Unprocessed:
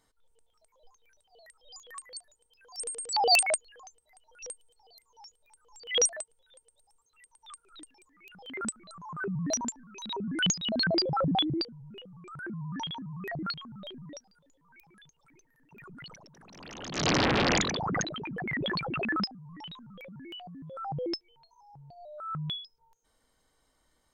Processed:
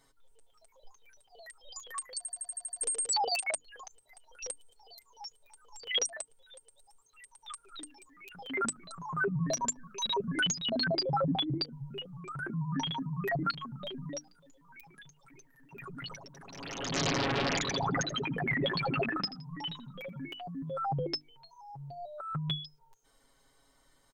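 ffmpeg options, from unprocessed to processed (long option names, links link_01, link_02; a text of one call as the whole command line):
ffmpeg -i in.wav -filter_complex "[0:a]asettb=1/sr,asplit=3[link_01][link_02][link_03];[link_01]atrim=end=9.404[link_04];[link_02]atrim=start=9.4:end=10.38,asetpts=PTS-STARTPTS,afade=type=in:duration=0.004:curve=qsin,afade=type=out:start_time=0.976:duration=0.004:curve=qsin,aecho=1:1:1.8:0.65,atrim=end_sample=43218[link_05];[link_03]atrim=start=10.376[link_06];[link_04][link_05]acrossfade=duration=0.004:curve1=hsin:curve2=qsin[link_07];[link_07][link_06]acrossfade=duration=0.004:curve1=qsin:curve2=hsin,asplit=3[link_08][link_09][link_10];[link_08]afade=type=out:start_time=17.66:duration=0.02[link_11];[link_09]aecho=1:1:83|166:0.119|0.0321,afade=type=in:start_time=17.66:duration=0.02,afade=type=out:start_time=20.29:duration=0.02[link_12];[link_10]afade=type=in:start_time=20.29:duration=0.02[link_13];[link_11][link_12][link_13]amix=inputs=3:normalize=0,asplit=9[link_14][link_15][link_16][link_17][link_18][link_19][link_20][link_21][link_22];[link_14]atrim=end=2.252[link_23];[link_15]atrim=start=2.168:end=2.252[link_24];[link_16]atrim=start=2.168:end=2.252[link_25];[link_17]atrim=start=2.168:end=2.252[link_26];[link_18]atrim=start=2.168:end=2.252[link_27];[link_19]atrim=start=2.168:end=2.252[link_28];[link_20]atrim=start=2.168:end=2.252[link_29];[link_21]atrim=start=2.168:end=2.252[link_30];[link_22]atrim=start=2.808[link_31];[link_23][link_24]acrossfade=duration=0.004:curve1=hsin:curve2=hsin[link_32];[link_32][link_25]acrossfade=duration=0.004:curve1=hsin:curve2=hsin[link_33];[link_33][link_26]acrossfade=duration=0.004:curve1=hsin:curve2=hsin[link_34];[link_34][link_27]acrossfade=duration=0.004:curve1=hsin:curve2=hsin[link_35];[link_35][link_28]acrossfade=duration=0.004:curve1=hsin:curve2=hsin[link_36];[link_36][link_29]acrossfade=duration=0.004:curve1=hsin:curve2=hsin[link_37];[link_37][link_30]acrossfade=duration=0.004:curve1=hsin:curve2=hsin[link_38];[link_38][link_31]acrossfade=duration=0.004:curve1=hsin:curve2=hsin,acompressor=threshold=-33dB:ratio=10,bandreject=frequency=50:width_type=h:width=6,bandreject=frequency=100:width_type=h:width=6,bandreject=frequency=150:width_type=h:width=6,bandreject=frequency=200:width_type=h:width=6,bandreject=frequency=250:width_type=h:width=6,bandreject=frequency=300:width_type=h:width=6,aecho=1:1:7.3:0.67,volume=3dB" out.wav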